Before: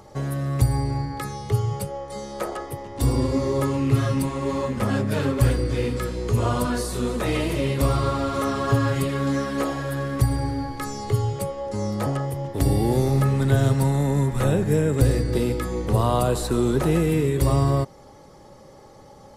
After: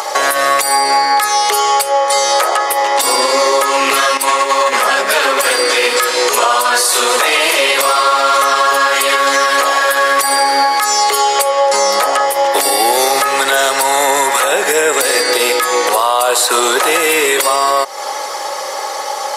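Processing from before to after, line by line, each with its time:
4.17–4.77 negative-ratio compressor -29 dBFS
whole clip: Bessel high-pass 930 Hz, order 4; compressor 6:1, threshold -42 dBFS; maximiser +35 dB; gain -1.5 dB

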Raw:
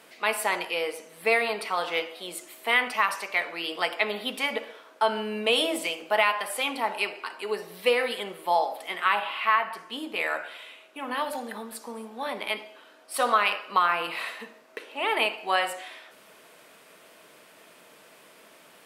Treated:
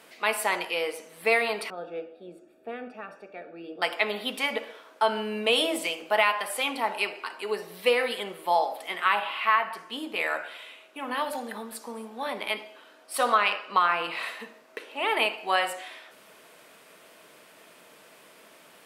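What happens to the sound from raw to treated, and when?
1.7–3.82 running mean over 43 samples
13.35–14.23 bell 12000 Hz -10 dB 0.61 oct

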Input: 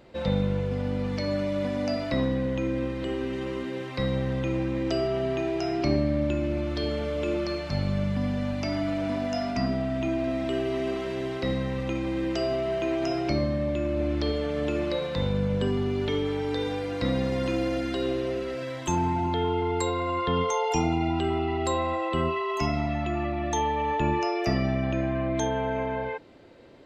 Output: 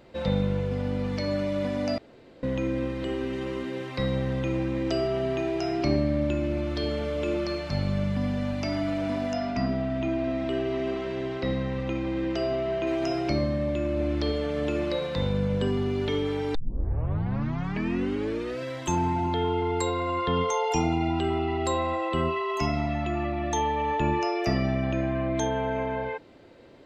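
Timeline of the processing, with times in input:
1.98–2.43 room tone
9.33–12.87 air absorption 91 m
16.55 tape start 2.07 s

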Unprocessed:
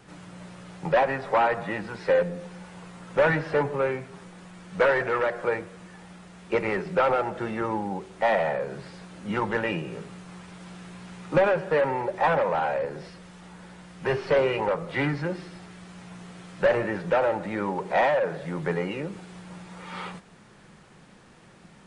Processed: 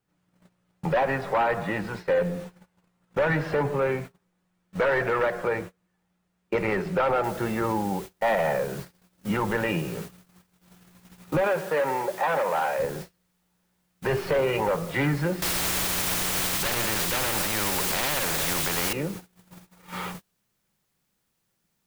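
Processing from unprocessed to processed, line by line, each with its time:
7.24 noise floor step -60 dB -48 dB
11.4–12.78 HPF 280 Hz -> 640 Hz 6 dB/oct
15.42–18.93 spectral compressor 4:1
whole clip: limiter -18.5 dBFS; low shelf 120 Hz +6 dB; gate -37 dBFS, range -31 dB; gain +2 dB

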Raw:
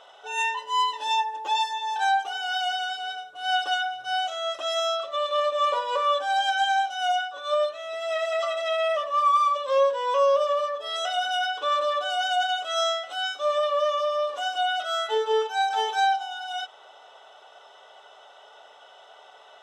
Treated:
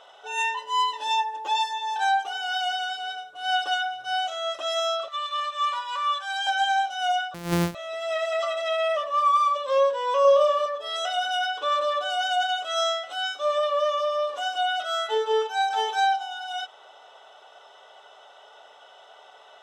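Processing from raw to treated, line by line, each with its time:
5.08–6.47 HPF 1000 Hz 24 dB/oct
7.34–7.75 sample sorter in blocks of 256 samples
10.22–10.66 flutter echo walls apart 4.6 m, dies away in 0.31 s

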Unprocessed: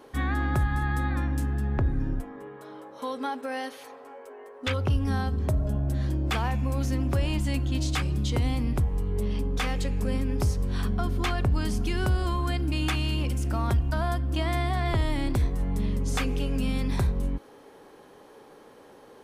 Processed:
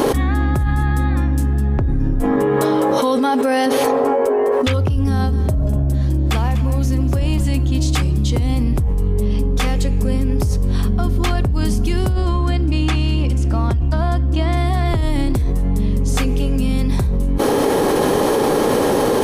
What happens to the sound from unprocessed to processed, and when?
3.66–4.52 tilt shelf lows +5.5 dB, about 1500 Hz
5.08–7.58 echo 0.245 s -13 dB
12.12–14.57 air absorption 58 m
whole clip: bell 1800 Hz -6 dB 2.9 oct; notch 1500 Hz, Q 25; fast leveller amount 100%; gain +4 dB

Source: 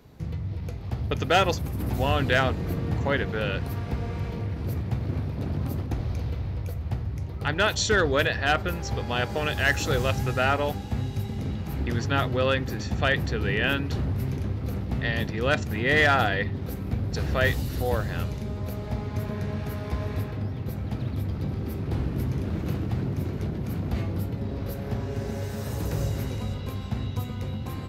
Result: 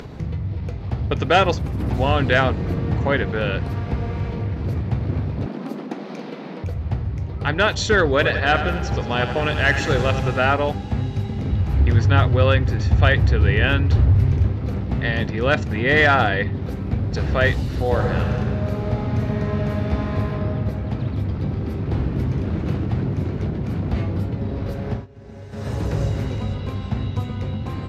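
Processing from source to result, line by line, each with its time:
5.46–6.64 brick-wall FIR high-pass 170 Hz
8.09–10.4 feedback echo 87 ms, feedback 60%, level -10 dB
11.52–14.47 resonant low shelf 130 Hz +7 dB, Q 1.5
17.83–20.49 reverb throw, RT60 2.5 s, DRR 1 dB
24.91–25.68 dip -22.5 dB, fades 0.16 s
whole clip: Bessel low-pass 6600 Hz, order 2; high shelf 5200 Hz -7 dB; upward compressor, threshold -31 dBFS; gain +5.5 dB

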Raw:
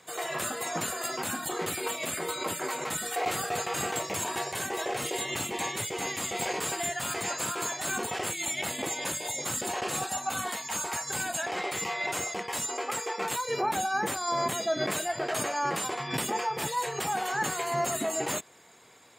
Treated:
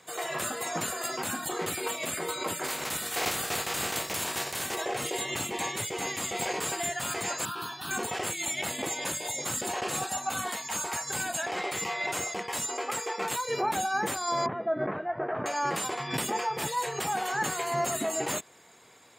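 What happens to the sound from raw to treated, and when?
2.63–4.74 spectral contrast lowered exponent 0.46
7.45–7.91 fixed phaser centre 2100 Hz, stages 6
14.46–15.46 LPF 1600 Hz 24 dB/oct

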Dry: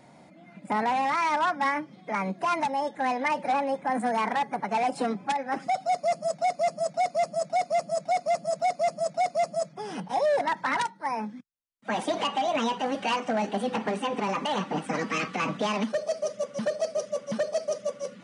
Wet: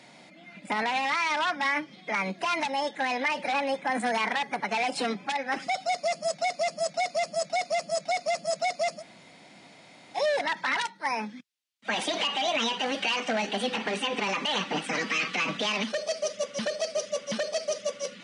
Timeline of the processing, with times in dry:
9–10.17 room tone, crossfade 0.06 s
whole clip: weighting filter D; limiter -18.5 dBFS

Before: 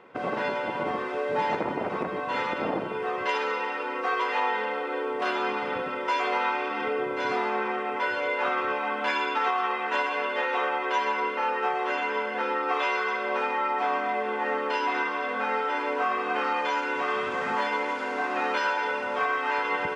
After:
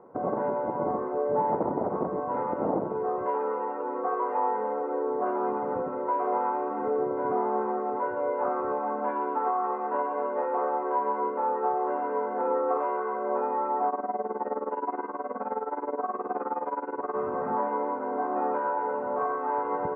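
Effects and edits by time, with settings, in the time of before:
11.98–12.77 flutter echo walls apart 9.9 m, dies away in 0.57 s
13.89–17.16 tremolo 19 Hz, depth 85%
whole clip: LPF 1000 Hz 24 dB/oct; gain +2 dB

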